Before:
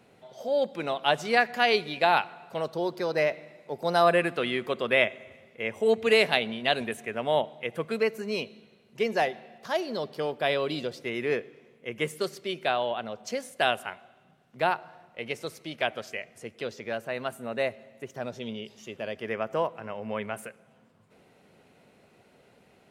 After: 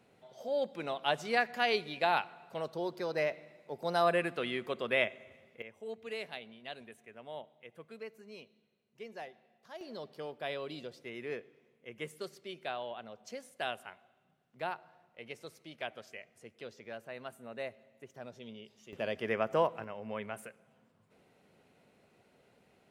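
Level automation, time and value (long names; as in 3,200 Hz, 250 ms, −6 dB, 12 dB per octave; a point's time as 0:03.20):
−7 dB
from 0:05.62 −19.5 dB
from 0:09.81 −12 dB
from 0:18.93 −1 dB
from 0:19.84 −7 dB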